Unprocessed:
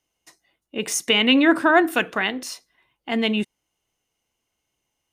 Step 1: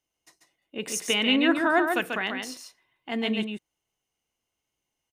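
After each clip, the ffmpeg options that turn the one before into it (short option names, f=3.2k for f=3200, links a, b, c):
-af "aecho=1:1:140:0.562,volume=-6.5dB"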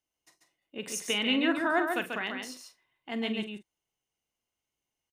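-filter_complex "[0:a]asplit=2[a][b];[b]adelay=44,volume=-12dB[c];[a][c]amix=inputs=2:normalize=0,volume=-5dB"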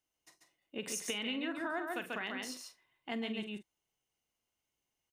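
-af "acompressor=threshold=-35dB:ratio=6"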